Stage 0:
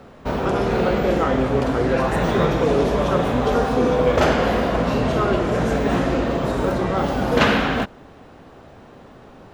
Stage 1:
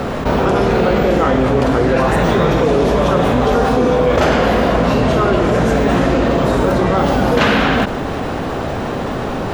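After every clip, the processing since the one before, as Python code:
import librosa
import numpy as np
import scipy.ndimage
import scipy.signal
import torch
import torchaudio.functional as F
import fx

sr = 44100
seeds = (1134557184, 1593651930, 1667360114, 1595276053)

y = fx.env_flatten(x, sr, amount_pct=70)
y = y * 10.0 ** (1.5 / 20.0)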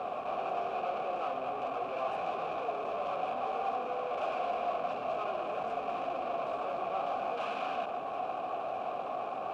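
y = fx.tube_stage(x, sr, drive_db=22.0, bias=0.6)
y = fx.quant_dither(y, sr, seeds[0], bits=8, dither='triangular')
y = fx.vowel_filter(y, sr, vowel='a')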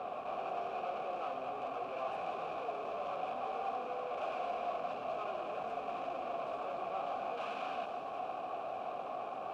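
y = fx.echo_wet_highpass(x, sr, ms=87, feedback_pct=84, hz=4300.0, wet_db=-8.0)
y = y * 10.0 ** (-4.5 / 20.0)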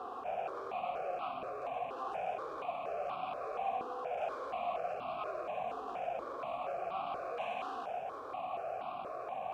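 y = fx.phaser_held(x, sr, hz=4.2, low_hz=620.0, high_hz=1800.0)
y = y * 10.0 ** (3.0 / 20.0)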